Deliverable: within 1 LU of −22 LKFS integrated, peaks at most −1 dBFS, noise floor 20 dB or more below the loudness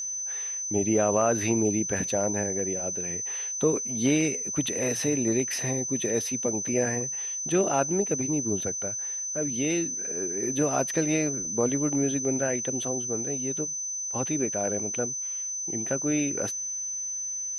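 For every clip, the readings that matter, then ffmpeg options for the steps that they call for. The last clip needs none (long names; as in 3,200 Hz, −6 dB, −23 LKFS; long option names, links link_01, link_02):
interfering tone 6,100 Hz; level of the tone −30 dBFS; integrated loudness −26.5 LKFS; sample peak −10.5 dBFS; target loudness −22.0 LKFS
→ -af "bandreject=frequency=6100:width=30"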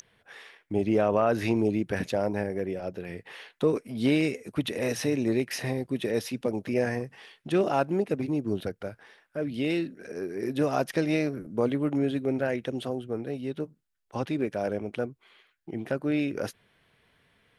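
interfering tone none found; integrated loudness −29.0 LKFS; sample peak −11.0 dBFS; target loudness −22.0 LKFS
→ -af "volume=7dB"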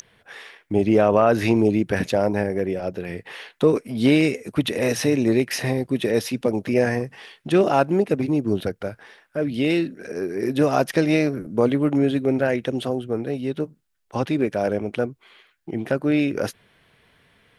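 integrated loudness −22.0 LKFS; sample peak −4.0 dBFS; background noise floor −63 dBFS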